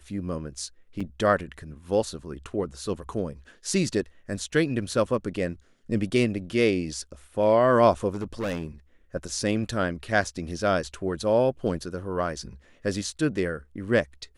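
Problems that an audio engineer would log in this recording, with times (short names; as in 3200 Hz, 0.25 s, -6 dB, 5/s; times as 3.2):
1 gap 5 ms
8.13–8.65 clipped -25.5 dBFS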